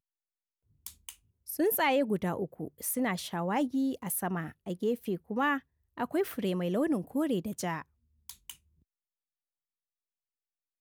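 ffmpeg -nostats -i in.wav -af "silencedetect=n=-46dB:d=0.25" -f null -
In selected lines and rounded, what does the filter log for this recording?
silence_start: 0.00
silence_end: 0.86 | silence_duration: 0.86
silence_start: 1.13
silence_end: 1.48 | silence_duration: 0.35
silence_start: 5.60
silence_end: 5.97 | silence_duration: 0.38
silence_start: 7.82
silence_end: 8.29 | silence_duration: 0.47
silence_start: 8.54
silence_end: 10.81 | silence_duration: 2.27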